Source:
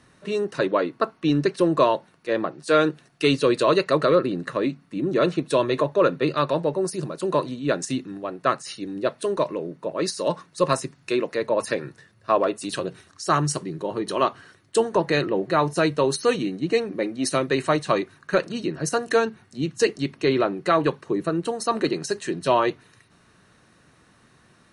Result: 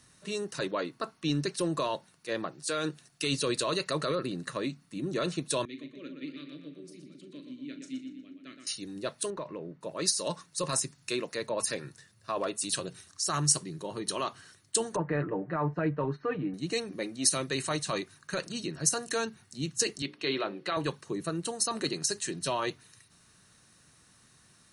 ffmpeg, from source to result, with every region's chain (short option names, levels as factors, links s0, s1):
-filter_complex "[0:a]asettb=1/sr,asplit=3[s0][s1][s2];[s0]atrim=end=5.654[s3];[s1]atrim=start=5.65:end=8.67,asetpts=PTS-STARTPTS,afade=t=in:d=0.004:c=qsin,afade=t=out:st=3.016:d=0.004:c=qsin,asplit=3[s4][s5][s6];[s4]bandpass=f=270:t=q:w=8,volume=1[s7];[s5]bandpass=f=2290:t=q:w=8,volume=0.501[s8];[s6]bandpass=f=3010:t=q:w=8,volume=0.355[s9];[s7][s8][s9]amix=inputs=3:normalize=0,asplit=2[s10][s11];[s11]adelay=40,volume=0.282[s12];[s10][s12]amix=inputs=2:normalize=0,atrim=end_sample=133182,asplit=2[s13][s14];[s14]adelay=120,lowpass=f=4600:p=1,volume=0.501,asplit=2[s15][s16];[s16]adelay=120,lowpass=f=4600:p=1,volume=0.55,asplit=2[s17][s18];[s18]adelay=120,lowpass=f=4600:p=1,volume=0.55,asplit=2[s19][s20];[s20]adelay=120,lowpass=f=4600:p=1,volume=0.55,asplit=2[s21][s22];[s22]adelay=120,lowpass=f=4600:p=1,volume=0.55,asplit=2[s23][s24];[s24]adelay=120,lowpass=f=4600:p=1,volume=0.55,asplit=2[s25][s26];[s26]adelay=120,lowpass=f=4600:p=1,volume=0.55[s27];[s13][s15][s17][s19][s21][s23][s25][s27]amix=inputs=8:normalize=0,atrim=end_sample=133182[s28];[s2]atrim=start=8.666[s29];[s3][s28]acrossfade=d=0.004:c1=hsin:c2=qsin[s30];[s30][s29]acrossfade=d=0.004:c1=qsin:c2=hsin,asettb=1/sr,asplit=3[s31][s32][s33];[s31]atrim=end=9.304[s34];[s32]atrim=start=9.3:end=9.81,asetpts=PTS-STARTPTS,afade=t=in:d=0.004:c=qsin,afade=t=out:st=0.506:d=0.004:c=qsin,lowpass=2300,acompressor=threshold=0.0708:ratio=6:attack=3.2:release=140:knee=1:detection=peak[s35];[s33]atrim=start=9.806[s36];[s34][s35]acrossfade=d=0.004:c1=hsin:c2=qsin[s37];[s37][s36]acrossfade=d=0.004:c1=qsin:c2=hsin,asettb=1/sr,asplit=3[s38][s39][s40];[s38]atrim=end=14.964[s41];[s39]atrim=start=14.96:end=16.54,asetpts=PTS-STARTPTS,afade=t=in:d=0.004:c=qsin,afade=t=out:st=1.576:d=0.004:c=qsin,lowpass=f=1800:w=0.5412,lowpass=f=1800:w=1.3066,aecho=1:1:6.7:0.64,atrim=end_sample=69678[s42];[s40]atrim=start=16.536[s43];[s41][s42]acrossfade=d=0.004:c1=hsin:c2=qsin[s44];[s44][s43]acrossfade=d=0.004:c1=qsin:c2=hsin,asettb=1/sr,asplit=3[s45][s46][s47];[s45]atrim=end=20.024[s48];[s46]atrim=start=20.02:end=20.77,asetpts=PTS-STARTPTS,afade=t=in:d=0.004:c=qsin,afade=t=out:st=0.746:d=0.004:c=qsin,highpass=210,highshelf=f=5100:t=q:w=1.5:g=-12,bandreject=f=60:t=h:w=6,bandreject=f=120:t=h:w=6,bandreject=f=180:t=h:w=6,bandreject=f=240:t=h:w=6,bandreject=f=300:t=h:w=6,bandreject=f=360:t=h:w=6,bandreject=f=420:t=h:w=6,bandreject=f=480:t=h:w=6,bandreject=f=540:t=h:w=6[s49];[s47]atrim=start=20.766[s50];[s48][s49]acrossfade=d=0.004:c1=hsin:c2=qsin[s51];[s51][s50]acrossfade=d=0.004:c1=qsin:c2=hsin,lowshelf=f=440:g=-11,alimiter=limit=0.15:level=0:latency=1:release=12,bass=f=250:g=12,treble=f=4000:g=13,volume=0.473"